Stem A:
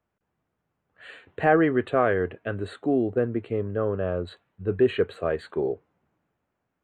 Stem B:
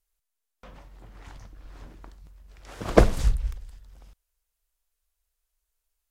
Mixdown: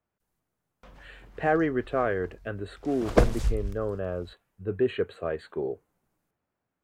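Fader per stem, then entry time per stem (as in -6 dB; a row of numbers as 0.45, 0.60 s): -4.5, -4.0 dB; 0.00, 0.20 s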